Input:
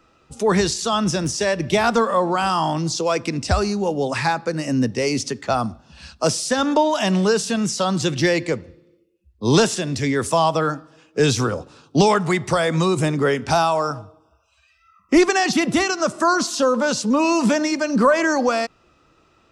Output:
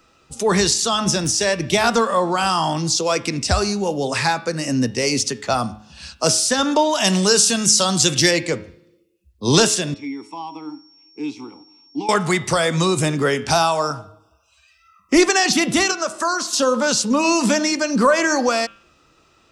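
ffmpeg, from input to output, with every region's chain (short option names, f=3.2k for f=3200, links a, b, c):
-filter_complex "[0:a]asettb=1/sr,asplit=3[a][b][c];[a]atrim=end=7.044[d];[b]atrim=start=7.04:end=8.31,asetpts=PTS-STARTPTS,afade=t=in:d=0.004:c=qsin,afade=t=out:st=1.266:d=0.004:c=qsin,acrossover=split=7800[e][f];[f]acompressor=threshold=-38dB:ratio=4:attack=1:release=60[g];[e][g]amix=inputs=2:normalize=0,equalizer=f=10k:w=0.49:g=10[h];[c]atrim=start=8.306[i];[d][h]acrossfade=d=0.004:c1=hsin:c2=qsin[j];[j][i]acrossfade=d=0.004:c1=qsin:c2=hsin,asettb=1/sr,asplit=3[k][l][m];[k]atrim=end=9.944[n];[l]atrim=start=9.94:end=12.09,asetpts=PTS-STARTPTS,afade=t=in:d=0.004:c=qsin,afade=t=out:st=2.146:d=0.004:c=qsin,asplit=3[o][p][q];[o]bandpass=f=300:t=q:w=8,volume=0dB[r];[p]bandpass=f=870:t=q:w=8,volume=-6dB[s];[q]bandpass=f=2.24k:t=q:w=8,volume=-9dB[t];[r][s][t]amix=inputs=3:normalize=0,lowshelf=f=110:g=-11.5,aeval=exprs='val(0)+0.00158*sin(2*PI*5500*n/s)':c=same[u];[m]atrim=start=12.086[v];[n][u]acrossfade=d=0.004:c1=hsin:c2=qsin[w];[w][v]acrossfade=d=0.004:c1=qsin:c2=hsin,asettb=1/sr,asplit=3[x][y][z];[x]atrim=end=15.914[aa];[y]atrim=start=15.91:end=16.53,asetpts=PTS-STARTPTS,afade=t=in:d=0.004:c=qsin,afade=t=out:st=0.616:d=0.004:c=qsin,equalizer=f=150:t=o:w=1:g=-12.5,acrossover=split=500|1900|4800[ab][ac][ad][ae];[ab]acompressor=threshold=-33dB:ratio=3[af];[ac]acompressor=threshold=-21dB:ratio=3[ag];[ad]acompressor=threshold=-40dB:ratio=3[ah];[ae]acompressor=threshold=-38dB:ratio=3[ai];[af][ag][ah][ai]amix=inputs=4:normalize=0[aj];[z]atrim=start=16.526[ak];[aa][aj]acrossfade=d=0.004:c1=hsin:c2=qsin[al];[al][ak]acrossfade=d=0.004:c1=qsin:c2=hsin,highshelf=f=3k:g=8.5,bandreject=f=106:t=h:w=4,bandreject=f=212:t=h:w=4,bandreject=f=318:t=h:w=4,bandreject=f=424:t=h:w=4,bandreject=f=530:t=h:w=4,bandreject=f=636:t=h:w=4,bandreject=f=742:t=h:w=4,bandreject=f=848:t=h:w=4,bandreject=f=954:t=h:w=4,bandreject=f=1.06k:t=h:w=4,bandreject=f=1.166k:t=h:w=4,bandreject=f=1.272k:t=h:w=4,bandreject=f=1.378k:t=h:w=4,bandreject=f=1.484k:t=h:w=4,bandreject=f=1.59k:t=h:w=4,bandreject=f=1.696k:t=h:w=4,bandreject=f=1.802k:t=h:w=4,bandreject=f=1.908k:t=h:w=4,bandreject=f=2.014k:t=h:w=4,bandreject=f=2.12k:t=h:w=4,bandreject=f=2.226k:t=h:w=4,bandreject=f=2.332k:t=h:w=4,bandreject=f=2.438k:t=h:w=4,bandreject=f=2.544k:t=h:w=4,bandreject=f=2.65k:t=h:w=4,bandreject=f=2.756k:t=h:w=4,bandreject=f=2.862k:t=h:w=4,bandreject=f=2.968k:t=h:w=4,bandreject=f=3.074k:t=h:w=4,bandreject=f=3.18k:t=h:w=4,bandreject=f=3.286k:t=h:w=4,bandreject=f=3.392k:t=h:w=4,bandreject=f=3.498k:t=h:w=4,bandreject=f=3.604k:t=h:w=4,bandreject=f=3.71k:t=h:w=4,bandreject=f=3.816k:t=h:w=4"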